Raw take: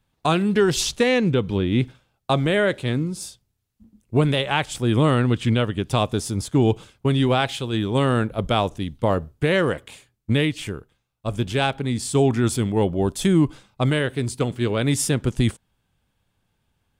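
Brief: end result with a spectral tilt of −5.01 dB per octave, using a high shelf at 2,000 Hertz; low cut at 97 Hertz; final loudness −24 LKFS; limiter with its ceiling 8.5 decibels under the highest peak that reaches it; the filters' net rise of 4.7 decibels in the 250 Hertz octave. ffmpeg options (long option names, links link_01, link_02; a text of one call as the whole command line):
ffmpeg -i in.wav -af "highpass=97,equalizer=frequency=250:width_type=o:gain=6,highshelf=frequency=2000:gain=4,volume=-1dB,alimiter=limit=-13dB:level=0:latency=1" out.wav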